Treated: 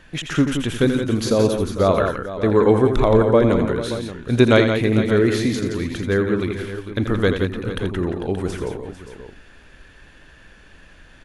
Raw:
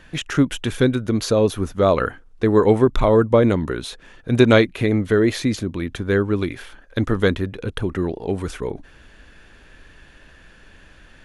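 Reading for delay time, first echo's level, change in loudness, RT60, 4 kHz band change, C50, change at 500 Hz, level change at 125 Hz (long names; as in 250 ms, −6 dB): 83 ms, −8.5 dB, +0.5 dB, no reverb audible, +0.5 dB, no reverb audible, +0.5 dB, +0.5 dB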